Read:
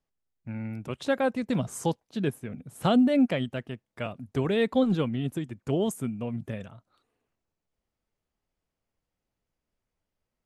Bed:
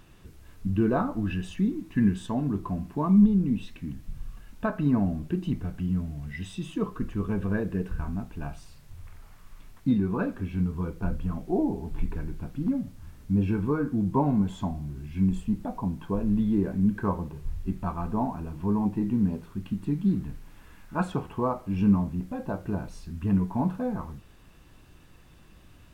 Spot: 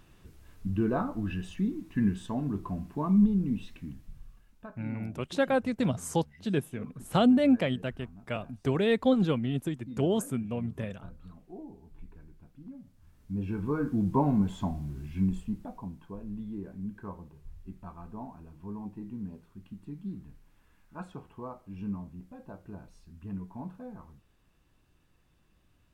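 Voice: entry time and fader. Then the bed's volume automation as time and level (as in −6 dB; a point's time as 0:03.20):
4.30 s, −0.5 dB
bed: 0:03.77 −4 dB
0:04.76 −19 dB
0:12.74 −19 dB
0:13.88 −1.5 dB
0:15.07 −1.5 dB
0:16.16 −14 dB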